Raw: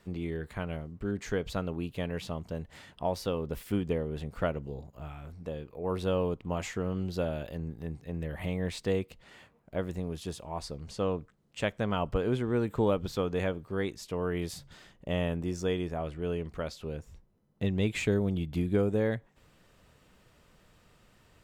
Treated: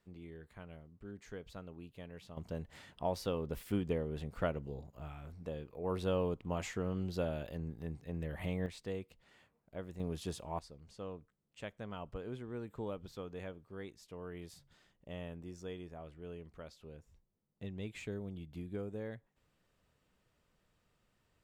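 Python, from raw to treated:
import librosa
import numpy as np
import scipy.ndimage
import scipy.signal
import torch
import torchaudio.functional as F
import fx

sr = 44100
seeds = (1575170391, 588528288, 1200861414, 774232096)

y = fx.gain(x, sr, db=fx.steps((0.0, -15.5), (2.37, -4.5), (8.66, -11.5), (10.0, -3.0), (10.59, -14.5)))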